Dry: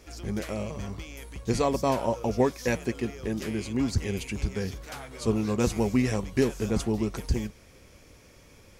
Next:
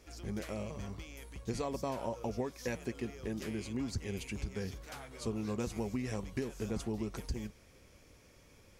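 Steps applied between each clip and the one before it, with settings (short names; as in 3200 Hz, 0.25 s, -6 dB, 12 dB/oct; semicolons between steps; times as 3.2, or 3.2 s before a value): compressor 10:1, threshold -25 dBFS, peak gain reduction 8.5 dB; gain -7 dB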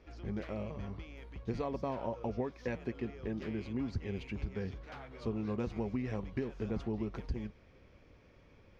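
air absorption 270 m; gain +1 dB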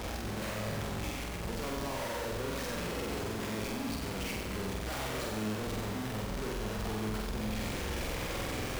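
infinite clipping; flutter echo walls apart 8 m, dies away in 0.99 s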